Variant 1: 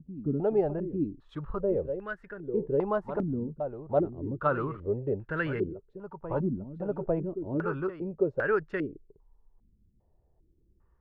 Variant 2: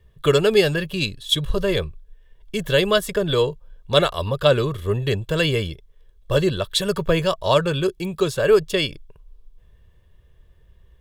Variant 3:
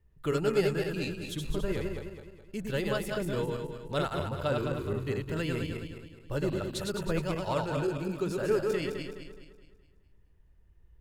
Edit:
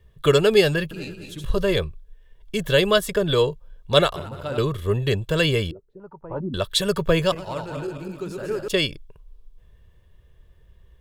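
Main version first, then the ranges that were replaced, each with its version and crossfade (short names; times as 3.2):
2
0.91–1.44 from 3
4.16–4.58 from 3
5.71–6.54 from 1
7.32–8.68 from 3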